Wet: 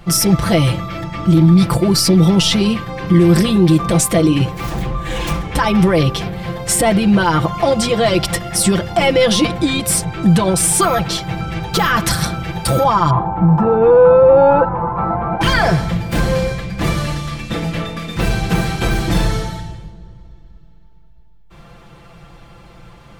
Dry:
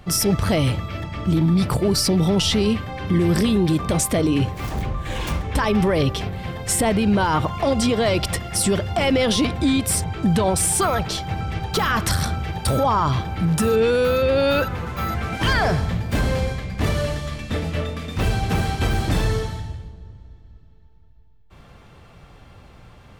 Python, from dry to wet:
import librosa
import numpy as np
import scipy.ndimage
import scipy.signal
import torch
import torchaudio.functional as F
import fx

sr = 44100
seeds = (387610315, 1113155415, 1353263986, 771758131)

y = fx.lowpass_res(x, sr, hz=910.0, q=4.9, at=(13.1, 15.41))
y = y + 0.79 * np.pad(y, (int(5.9 * sr / 1000.0), 0))[:len(y)]
y = y * librosa.db_to_amplitude(3.5)